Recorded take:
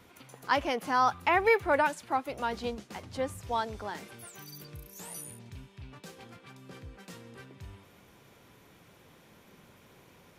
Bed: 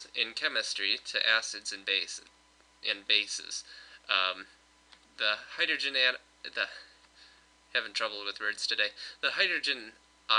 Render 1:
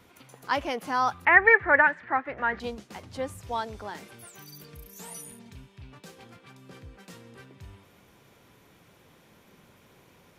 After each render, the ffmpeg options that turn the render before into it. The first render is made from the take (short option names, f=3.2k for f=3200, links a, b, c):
-filter_complex "[0:a]asettb=1/sr,asplit=3[a][b][c];[a]atrim=end=1.254[d];[b]atrim=start=1.25:end=2.6,asetpts=PTS-STARTPTS,afade=t=in:d=0.004:c=qsin,afade=t=out:st=1.346:d=0.004:c=qsin,lowpass=f=1.8k:t=q:w=7.3[e];[c]atrim=start=2.596[f];[d][e]acrossfade=d=0.004:c1=hsin:c2=qsin[g];[g][f]acrossfade=d=0.004:c1=qsin:c2=hsin,asettb=1/sr,asplit=3[h][i][j];[h]atrim=end=4.634[k];[i]atrim=start=4.63:end=5.55,asetpts=PTS-STARTPTS,afade=t=in:d=0.004:c=qsin,afade=t=out:st=0.916:d=0.004:c=qsin,aecho=1:1:4.4:0.65,atrim=end_sample=40572[l];[j]atrim=start=5.546[m];[k][l]acrossfade=d=0.004:c1=hsin:c2=qsin[n];[n][m]acrossfade=d=0.004:c1=qsin:c2=hsin"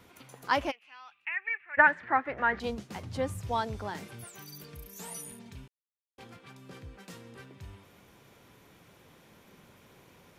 -filter_complex "[0:a]asplit=3[a][b][c];[a]afade=t=out:st=0.7:d=0.02[d];[b]bandpass=f=2.6k:t=q:w=10,afade=t=in:st=0.7:d=0.02,afade=t=out:st=1.77:d=0.02[e];[c]afade=t=in:st=1.77:d=0.02[f];[d][e][f]amix=inputs=3:normalize=0,asettb=1/sr,asplit=3[g][h][i];[g]atrim=end=2.694[j];[h]atrim=start=2.69:end=4.24,asetpts=PTS-STARTPTS,afade=t=in:d=0.004:c=qsin,afade=t=out:st=1.546:d=0.004:c=qsin,equalizer=f=120:t=o:w=1.4:g=8.5[k];[i]atrim=start=4.236[l];[j][k]acrossfade=d=0.004:c1=hsin:c2=qsin[m];[m][l]acrossfade=d=0.004:c1=qsin:c2=hsin,asplit=3[n][o][p];[n]atrim=end=5.68,asetpts=PTS-STARTPTS,afade=t=out:st=5.676:d=0.004:c=hsin[q];[o]atrim=start=5.68:end=6.18,asetpts=PTS-STARTPTS,volume=0[r];[p]atrim=start=6.18,asetpts=PTS-STARTPTS,afade=t=in:d=0.004:c=hsin[s];[q][r][s]concat=n=3:v=0:a=1"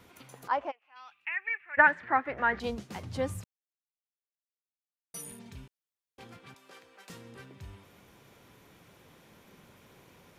-filter_complex "[0:a]asplit=3[a][b][c];[a]afade=t=out:st=0.47:d=0.02[d];[b]bandpass=f=800:t=q:w=1.3,afade=t=in:st=0.47:d=0.02,afade=t=out:st=0.95:d=0.02[e];[c]afade=t=in:st=0.95:d=0.02[f];[d][e][f]amix=inputs=3:normalize=0,asettb=1/sr,asplit=3[g][h][i];[g]atrim=end=6.544[j];[h]atrim=start=6.54:end=7.1,asetpts=PTS-STARTPTS,afade=t=in:d=0.004:c=qsin,afade=t=out:st=0.556:d=0.004:c=qsin,highpass=550[k];[i]atrim=start=7.096[l];[j][k]acrossfade=d=0.004:c1=hsin:c2=qsin[m];[m][l]acrossfade=d=0.004:c1=qsin:c2=hsin,asplit=3[n][o][p];[n]atrim=end=3.44,asetpts=PTS-STARTPTS,afade=t=out:st=3.436:d=0.004:c=hsin[q];[o]atrim=start=3.44:end=5.14,asetpts=PTS-STARTPTS,volume=0[r];[p]atrim=start=5.14,asetpts=PTS-STARTPTS,afade=t=in:d=0.004:c=hsin[s];[q][r][s]concat=n=3:v=0:a=1"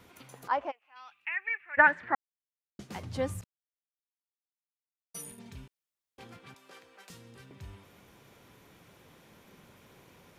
-filter_complex "[0:a]asettb=1/sr,asplit=3[a][b][c];[a]atrim=end=3.414[d];[b]atrim=start=3.41:end=5.38,asetpts=PTS-STARTPTS,afade=t=in:d=0.004:c=qsin,afade=t=out:st=1.966:d=0.004:c=qsin,agate=range=-33dB:threshold=-44dB:ratio=3:release=100:detection=peak[e];[c]atrim=start=5.376[f];[d][e]acrossfade=d=0.004:c1=hsin:c2=qsin[g];[g][f]acrossfade=d=0.004:c1=qsin:c2=hsin,asettb=1/sr,asplit=3[h][i][j];[h]atrim=end=7.084[k];[i]atrim=start=7.08:end=7.51,asetpts=PTS-STARTPTS,afade=t=in:d=0.004:c=qsin,afade=t=out:st=0.426:d=0.004:c=qsin,acrossover=split=150|3000[l][m][n];[m]acompressor=threshold=-56dB:ratio=2:attack=3.2:release=140:knee=2.83:detection=peak[o];[l][o][n]amix=inputs=3:normalize=0[p];[j]atrim=start=7.506[q];[k][p]acrossfade=d=0.004:c1=hsin:c2=qsin[r];[r][q]acrossfade=d=0.004:c1=qsin:c2=hsin,asplit=3[s][t][u];[s]atrim=end=2.15,asetpts=PTS-STARTPTS,afade=t=out:st=2.146:d=0.004:c=hsin[v];[t]atrim=start=2.15:end=2.79,asetpts=PTS-STARTPTS,volume=0[w];[u]atrim=start=2.79,asetpts=PTS-STARTPTS,afade=t=in:d=0.004:c=hsin[x];[v][w][x]concat=n=3:v=0:a=1"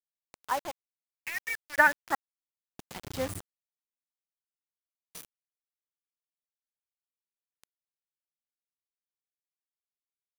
-af "acrusher=bits=5:mix=0:aa=0.000001,aeval=exprs='sgn(val(0))*max(abs(val(0))-0.00794,0)':c=same"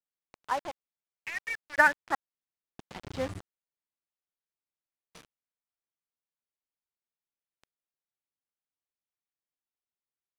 -af "adynamicsmooth=sensitivity=7.5:basefreq=3.3k"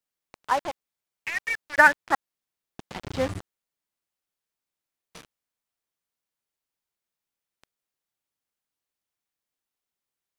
-af "volume=6.5dB,alimiter=limit=-3dB:level=0:latency=1"